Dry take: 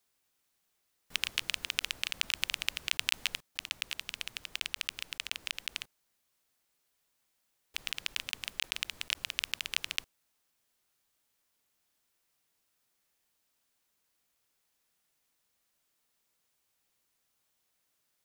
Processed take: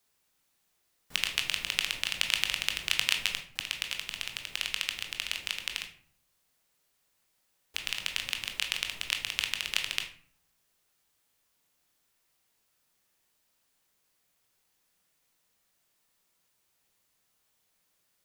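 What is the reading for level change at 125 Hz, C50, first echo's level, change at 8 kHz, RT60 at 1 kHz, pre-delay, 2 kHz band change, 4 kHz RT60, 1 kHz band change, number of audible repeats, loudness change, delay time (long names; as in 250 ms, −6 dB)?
+5.0 dB, 9.0 dB, no echo audible, +3.5 dB, 0.50 s, 19 ms, +4.0 dB, 0.35 s, +4.0 dB, no echo audible, +4.0 dB, no echo audible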